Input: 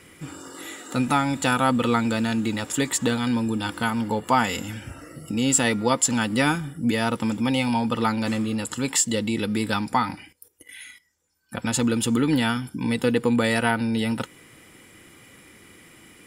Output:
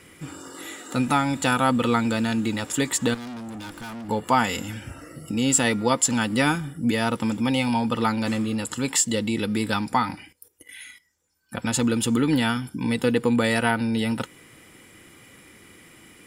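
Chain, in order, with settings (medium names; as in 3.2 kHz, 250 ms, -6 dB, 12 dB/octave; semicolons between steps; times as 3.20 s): 3.14–4.09 s: valve stage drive 34 dB, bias 0.55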